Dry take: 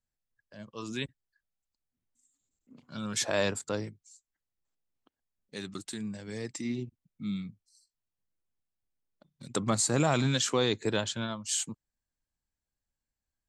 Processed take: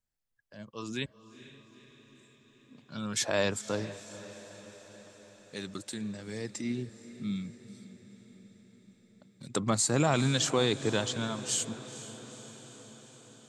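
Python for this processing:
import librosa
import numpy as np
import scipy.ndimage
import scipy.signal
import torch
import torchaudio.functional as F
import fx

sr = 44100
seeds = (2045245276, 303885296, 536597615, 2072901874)

y = x + fx.echo_diffused(x, sr, ms=464, feedback_pct=65, wet_db=-15.0, dry=0)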